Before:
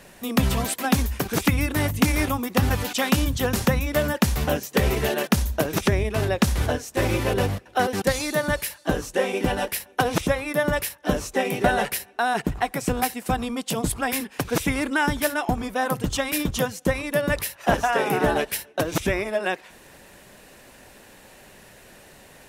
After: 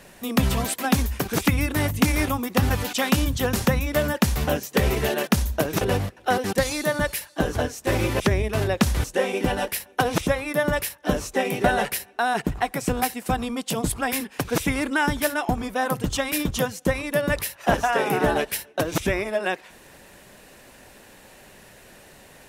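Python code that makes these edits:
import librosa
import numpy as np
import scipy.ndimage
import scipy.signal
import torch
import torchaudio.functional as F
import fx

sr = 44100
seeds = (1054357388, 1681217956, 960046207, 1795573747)

y = fx.edit(x, sr, fx.swap(start_s=5.81, length_s=0.84, other_s=7.3, other_length_s=1.74), tone=tone)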